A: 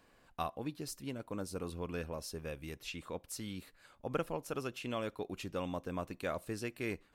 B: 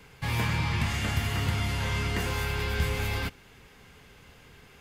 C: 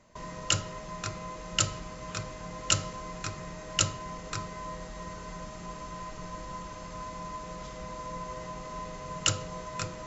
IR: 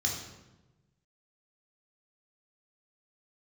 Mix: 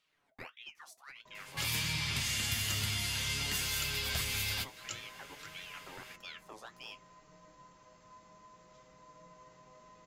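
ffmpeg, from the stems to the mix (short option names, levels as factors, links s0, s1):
-filter_complex "[0:a]aeval=exprs='val(0)*sin(2*PI*1800*n/s+1800*0.65/1.6*sin(2*PI*1.6*n/s))':c=same,volume=0.631[s0];[1:a]tiltshelf=f=800:g=-9,acrossover=split=320|3000[s1][s2][s3];[s2]acompressor=threshold=0.00794:ratio=6[s4];[s1][s4][s3]amix=inputs=3:normalize=0,adelay=1350,volume=1.19[s5];[2:a]lowshelf=f=90:g=-11.5,adelay=1100,volume=0.224[s6];[s0][s5][s6]amix=inputs=3:normalize=0,flanger=delay=6.2:depth=3.3:regen=59:speed=0.54:shape=triangular"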